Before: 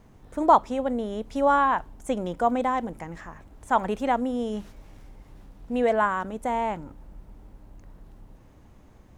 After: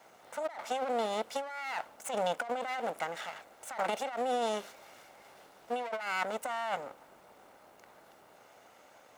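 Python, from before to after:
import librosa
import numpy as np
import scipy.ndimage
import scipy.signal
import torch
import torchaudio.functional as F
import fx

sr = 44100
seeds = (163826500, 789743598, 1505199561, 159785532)

y = fx.lower_of_two(x, sr, delay_ms=1.4)
y = scipy.signal.sosfilt(scipy.signal.butter(2, 550.0, 'highpass', fs=sr, output='sos'), y)
y = fx.over_compress(y, sr, threshold_db=-35.0, ratio=-1.0)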